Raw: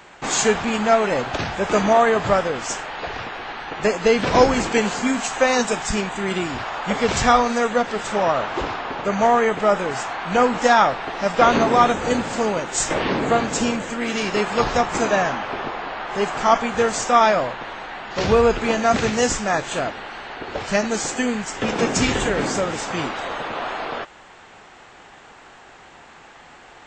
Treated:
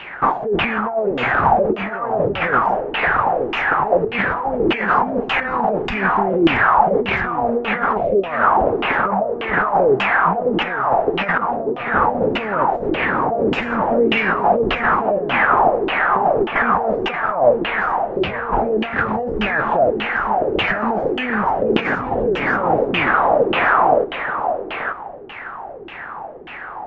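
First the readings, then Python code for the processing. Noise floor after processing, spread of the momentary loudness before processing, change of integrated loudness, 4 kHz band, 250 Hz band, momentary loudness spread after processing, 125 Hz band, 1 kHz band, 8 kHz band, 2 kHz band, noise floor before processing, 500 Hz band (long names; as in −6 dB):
−32 dBFS, 12 LU, +2.5 dB, −1.0 dB, +1.0 dB, 7 LU, +1.0 dB, +4.0 dB, below −30 dB, +5.5 dB, −46 dBFS, +2.0 dB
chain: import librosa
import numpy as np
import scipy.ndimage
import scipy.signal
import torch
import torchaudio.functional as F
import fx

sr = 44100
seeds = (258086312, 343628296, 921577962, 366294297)

y = fx.spec_erase(x, sr, start_s=7.97, length_s=0.28, low_hz=740.0, high_hz=2000.0)
y = fx.over_compress(y, sr, threshold_db=-26.0, ratio=-1.0)
y = y + 10.0 ** (-7.5 / 20.0) * np.pad(y, (int(880 * sr / 1000.0), 0))[:len(y)]
y = fx.filter_lfo_lowpass(y, sr, shape='saw_down', hz=1.7, low_hz=330.0, high_hz=3000.0, q=6.4)
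y = scipy.ndimage.gaussian_filter1d(y, 1.5, mode='constant')
y = y * 10.0 ** (1.5 / 20.0)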